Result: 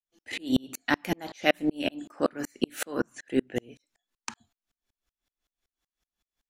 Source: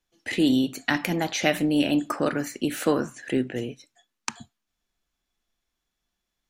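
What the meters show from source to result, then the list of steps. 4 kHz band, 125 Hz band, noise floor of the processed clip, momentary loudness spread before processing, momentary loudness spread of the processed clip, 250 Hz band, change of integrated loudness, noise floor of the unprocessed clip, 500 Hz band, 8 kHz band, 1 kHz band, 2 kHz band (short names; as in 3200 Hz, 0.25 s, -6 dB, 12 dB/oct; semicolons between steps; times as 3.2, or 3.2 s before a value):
-4.5 dB, -8.0 dB, under -85 dBFS, 14 LU, 12 LU, -6.0 dB, -4.5 dB, -82 dBFS, -3.5 dB, -6.0 dB, -3.5 dB, -3.0 dB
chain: bell 150 Hz -7.5 dB 0.59 oct; dB-ramp tremolo swelling 5.3 Hz, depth 39 dB; gain +5 dB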